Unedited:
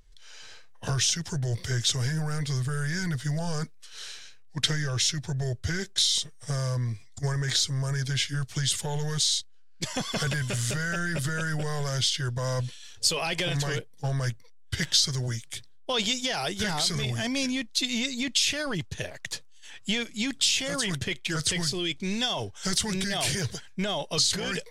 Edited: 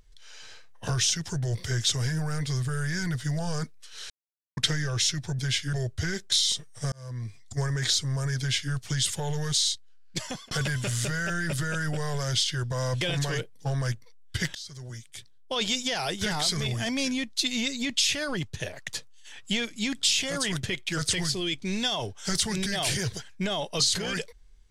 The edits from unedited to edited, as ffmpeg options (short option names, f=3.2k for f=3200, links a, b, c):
-filter_complex "[0:a]asplit=9[a][b][c][d][e][f][g][h][i];[a]atrim=end=4.1,asetpts=PTS-STARTPTS,afade=t=out:st=4.096:d=0.004:c=hsin[j];[b]atrim=start=4.1:end=4.57,asetpts=PTS-STARTPTS,volume=0[k];[c]atrim=start=4.57:end=5.392,asetpts=PTS-STARTPTS,afade=t=in:d=0.004:c=hsin[l];[d]atrim=start=8.048:end=8.392[m];[e]atrim=start=5.388:end=6.58,asetpts=PTS-STARTPTS,afade=t=out:st=1.188:d=0.004:c=hsin[n];[f]atrim=start=6.58:end=10.17,asetpts=PTS-STARTPTS,afade=t=in:d=0.5,afade=t=out:st=3.25:d=0.34[o];[g]atrim=start=10.17:end=12.672,asetpts=PTS-STARTPTS,afade=t=in:d=0.004:c=hsin[p];[h]atrim=start=13.388:end=14.93,asetpts=PTS-STARTPTS,afade=t=out:st=1.538:d=0.004:c=hsin:silence=0.0707946[q];[i]atrim=start=14.93,asetpts=PTS-STARTPTS,afade=t=in:d=1.24:silence=0.0707946[r];[j][k][l]concat=n=3:v=0:a=1[s];[s][m]acrossfade=d=0.004:c1=hsin:c2=hsin[t];[n][o][p]concat=n=3:v=0:a=1[u];[t][u]acrossfade=d=0.004:c1=hsin:c2=hsin[v];[q][r]concat=n=2:v=0:a=1[w];[v][w]acrossfade=d=0.004:c1=hsin:c2=hsin"